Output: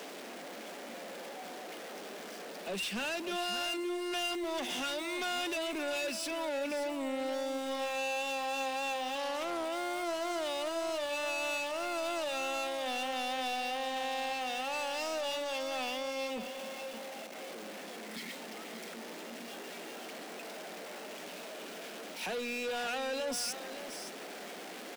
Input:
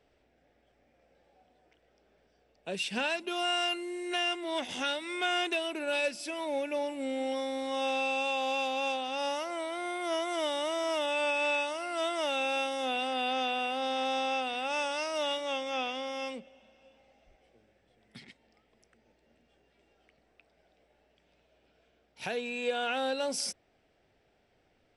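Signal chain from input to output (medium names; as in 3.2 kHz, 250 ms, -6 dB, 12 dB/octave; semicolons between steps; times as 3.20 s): jump at every zero crossing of -40.5 dBFS; steep high-pass 180 Hz 72 dB/octave; saturation -35 dBFS, distortion -7 dB; delay 571 ms -10.5 dB; 9.15–9.65 s: loudspeaker Doppler distortion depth 0.18 ms; trim +2 dB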